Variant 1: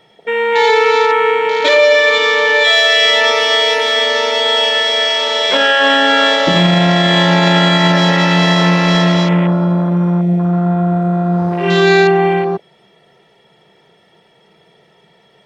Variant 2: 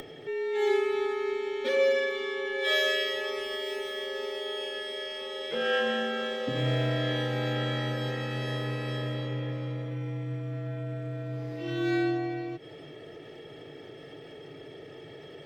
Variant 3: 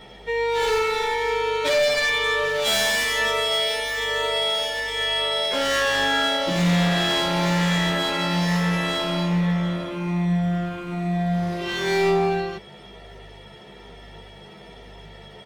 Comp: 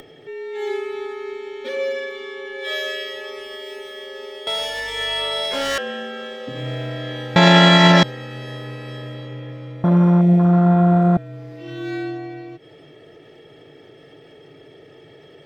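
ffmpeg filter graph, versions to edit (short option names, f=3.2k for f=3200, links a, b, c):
-filter_complex "[0:a]asplit=2[a][b];[1:a]asplit=4[c][d][e][f];[c]atrim=end=4.472[g];[2:a]atrim=start=4.468:end=5.782[h];[d]atrim=start=5.778:end=7.362[i];[a]atrim=start=7.358:end=8.032[j];[e]atrim=start=8.028:end=9.842[k];[b]atrim=start=9.838:end=11.172[l];[f]atrim=start=11.168[m];[g][h]acrossfade=d=0.004:c1=hsin:c2=hsin[n];[n][i]acrossfade=d=0.004:c1=hsin:c2=hsin[o];[o][j]acrossfade=d=0.004:c1=hsin:c2=hsin[p];[p][k]acrossfade=d=0.004:c1=hsin:c2=hsin[q];[q][l]acrossfade=d=0.004:c1=hsin:c2=hsin[r];[r][m]acrossfade=d=0.004:c1=hsin:c2=hsin"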